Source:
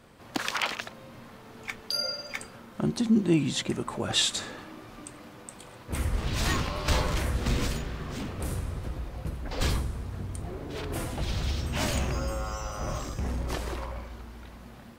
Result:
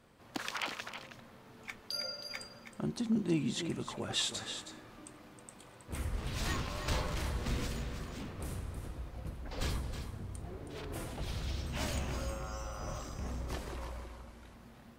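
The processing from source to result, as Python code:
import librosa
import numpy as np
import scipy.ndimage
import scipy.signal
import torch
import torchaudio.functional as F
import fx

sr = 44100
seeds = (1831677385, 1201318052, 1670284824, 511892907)

p1 = fx.cvsd(x, sr, bps=64000, at=(13.71, 14.54))
p2 = p1 + fx.echo_single(p1, sr, ms=319, db=-9.0, dry=0)
y = p2 * librosa.db_to_amplitude(-8.5)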